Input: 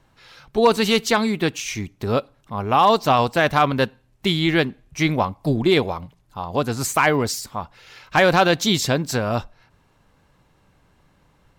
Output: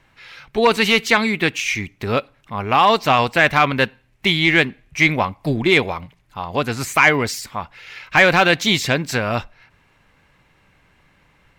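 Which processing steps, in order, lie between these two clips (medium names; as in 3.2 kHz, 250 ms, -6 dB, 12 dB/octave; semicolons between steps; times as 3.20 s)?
de-esser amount 45%; peaking EQ 2.2 kHz +11.5 dB 1.1 oct; saturation -1 dBFS, distortion -23 dB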